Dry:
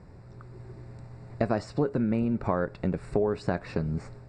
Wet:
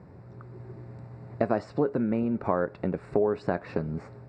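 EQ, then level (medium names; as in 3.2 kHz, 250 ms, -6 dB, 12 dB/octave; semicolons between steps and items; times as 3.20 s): high-pass 100 Hz 12 dB/octave; low-pass 1.6 kHz 6 dB/octave; dynamic bell 130 Hz, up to -6 dB, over -42 dBFS, Q 0.78; +3.0 dB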